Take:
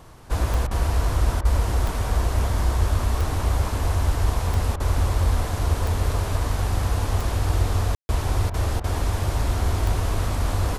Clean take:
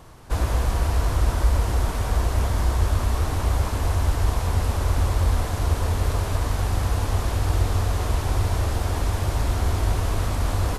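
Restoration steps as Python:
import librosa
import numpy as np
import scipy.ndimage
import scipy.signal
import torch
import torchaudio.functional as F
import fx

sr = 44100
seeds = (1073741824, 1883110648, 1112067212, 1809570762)

y = fx.fix_declick_ar(x, sr, threshold=10.0)
y = fx.fix_ambience(y, sr, seeds[0], print_start_s=0.0, print_end_s=0.5, start_s=7.95, end_s=8.09)
y = fx.fix_interpolate(y, sr, at_s=(0.67, 1.41, 4.76, 8.5, 8.8), length_ms=39.0)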